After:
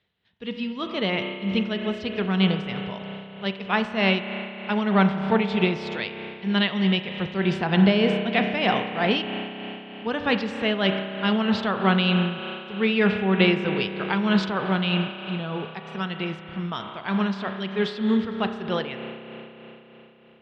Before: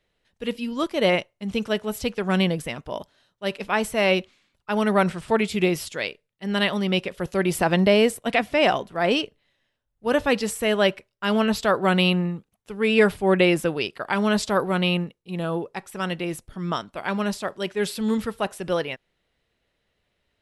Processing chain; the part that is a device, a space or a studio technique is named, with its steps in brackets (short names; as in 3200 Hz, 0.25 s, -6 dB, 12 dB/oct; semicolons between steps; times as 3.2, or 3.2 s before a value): combo amplifier with spring reverb and tremolo (spring tank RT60 4 s, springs 31 ms, chirp 60 ms, DRR 5 dB; tremolo 3.2 Hz, depth 44%; speaker cabinet 80–4500 Hz, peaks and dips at 110 Hz +6 dB, 200 Hz +5 dB, 310 Hz -4 dB, 560 Hz -7 dB, 3400 Hz +5 dB)